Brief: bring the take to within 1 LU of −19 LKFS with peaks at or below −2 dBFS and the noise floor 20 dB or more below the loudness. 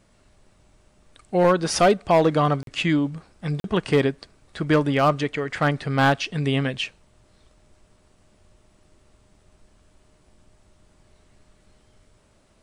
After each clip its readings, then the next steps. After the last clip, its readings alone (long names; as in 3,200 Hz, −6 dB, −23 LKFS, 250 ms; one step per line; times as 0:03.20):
share of clipped samples 0.3%; peaks flattened at −10.5 dBFS; number of dropouts 2; longest dropout 42 ms; integrated loudness −22.0 LKFS; sample peak −10.5 dBFS; target loudness −19.0 LKFS
→ clipped peaks rebuilt −10.5 dBFS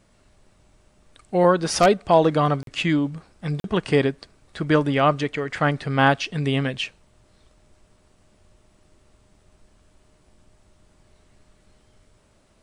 share of clipped samples 0.0%; number of dropouts 2; longest dropout 42 ms
→ repair the gap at 0:02.63/0:03.60, 42 ms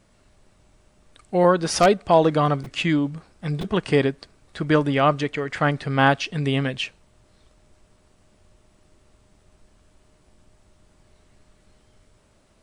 number of dropouts 0; integrated loudness −21.5 LKFS; sample peak −3.0 dBFS; target loudness −19.0 LKFS
→ level +2.5 dB
brickwall limiter −2 dBFS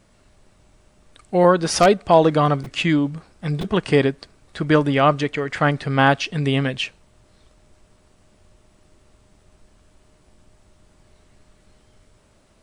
integrated loudness −19.0 LKFS; sample peak −2.0 dBFS; background noise floor −57 dBFS